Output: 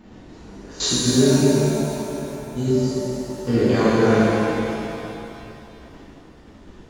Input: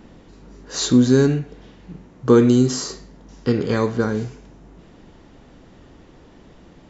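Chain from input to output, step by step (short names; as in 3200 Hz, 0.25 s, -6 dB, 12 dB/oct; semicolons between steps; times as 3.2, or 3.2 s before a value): level quantiser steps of 23 dB; spectral freeze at 1.46, 1.11 s; shimmer reverb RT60 2.7 s, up +7 st, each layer -8 dB, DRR -11.5 dB; gain -3.5 dB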